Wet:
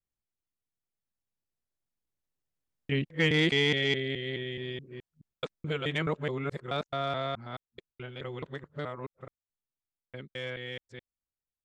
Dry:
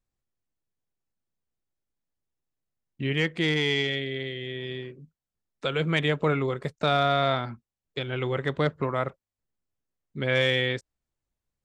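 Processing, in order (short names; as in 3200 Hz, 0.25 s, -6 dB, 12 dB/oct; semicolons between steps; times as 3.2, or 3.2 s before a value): local time reversal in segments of 0.21 s; Doppler pass-by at 3.55, 7 m/s, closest 9.6 m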